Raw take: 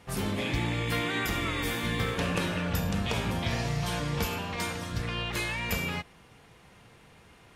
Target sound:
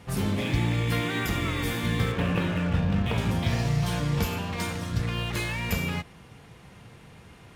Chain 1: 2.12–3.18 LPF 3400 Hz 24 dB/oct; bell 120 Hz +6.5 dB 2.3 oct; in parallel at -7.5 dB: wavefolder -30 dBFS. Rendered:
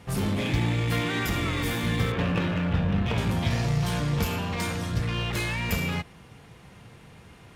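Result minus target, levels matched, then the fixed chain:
wavefolder: distortion -29 dB
2.12–3.18 LPF 3400 Hz 24 dB/oct; bell 120 Hz +6.5 dB 2.3 oct; in parallel at -7.5 dB: wavefolder -40 dBFS

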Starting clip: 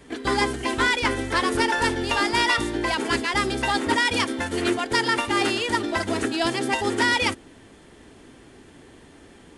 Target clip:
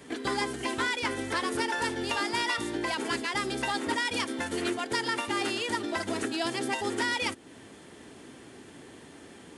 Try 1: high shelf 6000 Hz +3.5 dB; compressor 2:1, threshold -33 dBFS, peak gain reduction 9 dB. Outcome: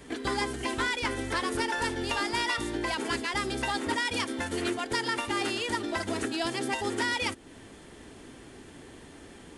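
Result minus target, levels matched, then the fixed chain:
125 Hz band +3.5 dB
HPF 110 Hz 12 dB/oct; high shelf 6000 Hz +3.5 dB; compressor 2:1, threshold -33 dBFS, peak gain reduction 9 dB

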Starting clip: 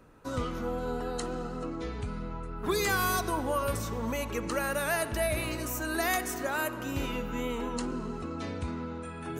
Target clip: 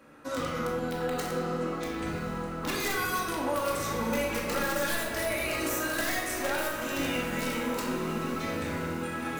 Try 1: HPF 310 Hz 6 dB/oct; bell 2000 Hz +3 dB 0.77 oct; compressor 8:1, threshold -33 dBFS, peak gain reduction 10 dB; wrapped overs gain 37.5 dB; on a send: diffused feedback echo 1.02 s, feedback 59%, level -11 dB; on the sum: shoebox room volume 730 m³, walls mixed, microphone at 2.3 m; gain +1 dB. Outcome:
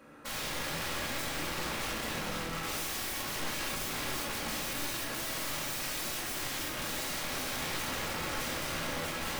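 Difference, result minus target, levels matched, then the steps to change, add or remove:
wrapped overs: distortion +31 dB
change: wrapped overs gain 27.5 dB

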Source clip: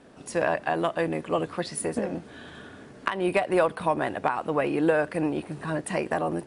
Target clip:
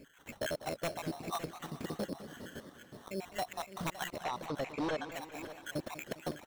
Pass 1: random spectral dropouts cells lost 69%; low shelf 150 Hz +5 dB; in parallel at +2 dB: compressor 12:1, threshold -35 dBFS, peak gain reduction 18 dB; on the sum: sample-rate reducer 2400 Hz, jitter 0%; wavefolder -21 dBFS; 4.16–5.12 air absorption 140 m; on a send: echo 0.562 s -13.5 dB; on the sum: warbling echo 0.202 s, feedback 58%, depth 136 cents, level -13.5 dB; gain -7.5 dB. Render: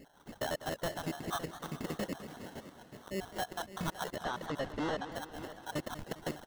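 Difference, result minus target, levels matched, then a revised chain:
compressor: peak gain reduction -6 dB; sample-rate reducer: distortion +6 dB
random spectral dropouts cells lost 69%; low shelf 150 Hz +5 dB; in parallel at +2 dB: compressor 12:1, threshold -41.5 dBFS, peak gain reduction 24 dB; on the sum: sample-rate reducer 4800 Hz, jitter 0%; wavefolder -21 dBFS; 4.16–5.12 air absorption 140 m; on a send: echo 0.562 s -13.5 dB; on the sum: warbling echo 0.202 s, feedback 58%, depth 136 cents, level -13.5 dB; gain -7.5 dB

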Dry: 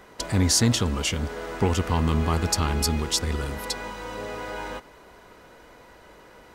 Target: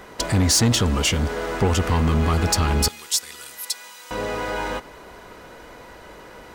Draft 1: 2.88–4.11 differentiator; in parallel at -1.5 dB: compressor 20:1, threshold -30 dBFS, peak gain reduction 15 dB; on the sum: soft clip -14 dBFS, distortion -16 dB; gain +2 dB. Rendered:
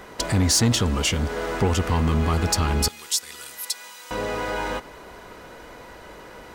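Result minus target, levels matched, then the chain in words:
compressor: peak gain reduction +10.5 dB
2.88–4.11 differentiator; in parallel at -1.5 dB: compressor 20:1, threshold -19 dBFS, peak gain reduction 4.5 dB; on the sum: soft clip -14 dBFS, distortion -13 dB; gain +2 dB

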